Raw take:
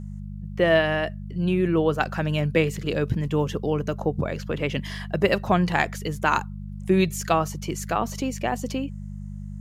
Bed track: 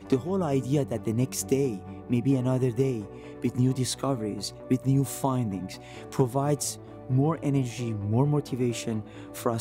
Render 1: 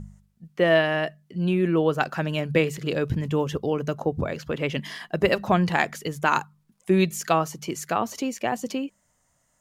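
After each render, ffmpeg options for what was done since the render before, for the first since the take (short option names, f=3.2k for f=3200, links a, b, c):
-af "bandreject=f=50:t=h:w=4,bandreject=f=100:t=h:w=4,bandreject=f=150:t=h:w=4,bandreject=f=200:t=h:w=4"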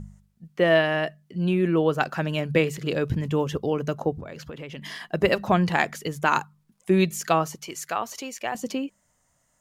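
-filter_complex "[0:a]asettb=1/sr,asplit=3[a][b][c];[a]atrim=end=4.174[d];[b]atrim=start=4.17:end=4.82,asetpts=PTS-STARTPTS,afade=t=in:d=0.004:c=qsin,afade=t=out:st=0.646:d=0.004:c=qsin,acompressor=threshold=-34dB:ratio=6:attack=3.2:release=140:knee=1:detection=peak[e];[c]atrim=start=4.816[f];[d][e]acrossfade=d=0.004:c1=hsin:c2=qsin[g];[g][f]acrossfade=d=0.004:c1=qsin:c2=hsin,asettb=1/sr,asplit=3[h][i][j];[h]atrim=end=7.554[k];[i]atrim=start=7.55:end=8.55,asetpts=PTS-STARTPTS,afade=t=in:d=0.004:c=qsin,afade=t=out:st=0.996:d=0.004:c=qsin,equalizer=f=180:t=o:w=2.8:g=-12[l];[j]atrim=start=8.546[m];[k][l]acrossfade=d=0.004:c1=hsin:c2=qsin[n];[n][m]acrossfade=d=0.004:c1=qsin:c2=hsin"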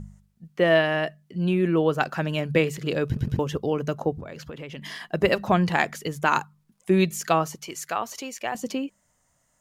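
-filter_complex "[0:a]asplit=4[a][b][c][d];[a]atrim=end=3.172[e];[b]atrim=start=3.058:end=3.172[f];[c]atrim=start=3.058:end=3.172[g];[d]atrim=start=3.388[h];[e][f]acrossfade=d=0.004:c1=hsin:c2=hsin[i];[i][g]acrossfade=d=0.004:c1=hsin:c2=hsin[j];[j][h]acrossfade=d=0.004:c1=hsin:c2=hsin"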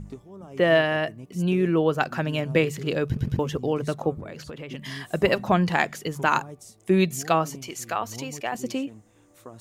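-filter_complex "[1:a]volume=-16.5dB[a];[0:a][a]amix=inputs=2:normalize=0"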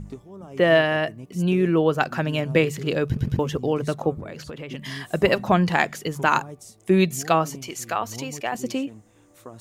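-af "volume=2dB"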